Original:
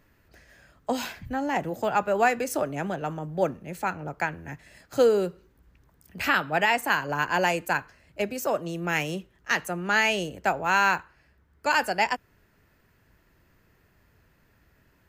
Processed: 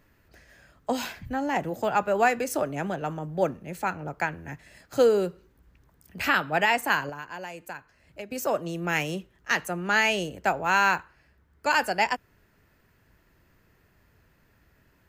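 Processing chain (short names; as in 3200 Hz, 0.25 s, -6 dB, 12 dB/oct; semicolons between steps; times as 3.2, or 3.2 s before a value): 7.09–8.32 compressor 3:1, threshold -40 dBFS, peak gain reduction 15.5 dB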